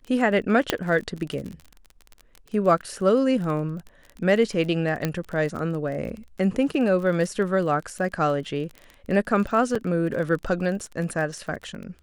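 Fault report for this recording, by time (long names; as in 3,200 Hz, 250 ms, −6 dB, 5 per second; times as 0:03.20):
surface crackle 26 per second −31 dBFS
0:00.70: click −5 dBFS
0:05.05: click −10 dBFS
0:09.75: drop-out 4.7 ms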